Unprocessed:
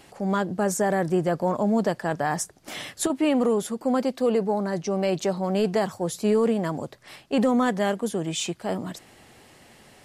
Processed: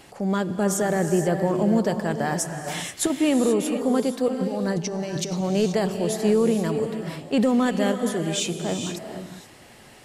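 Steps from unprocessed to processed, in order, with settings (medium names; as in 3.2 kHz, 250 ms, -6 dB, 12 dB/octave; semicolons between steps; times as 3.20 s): dynamic bell 1 kHz, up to -6 dB, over -39 dBFS, Q 0.86; 4.28–5.41 s: compressor with a negative ratio -29 dBFS, ratio -0.5; gated-style reverb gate 500 ms rising, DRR 6 dB; trim +2.5 dB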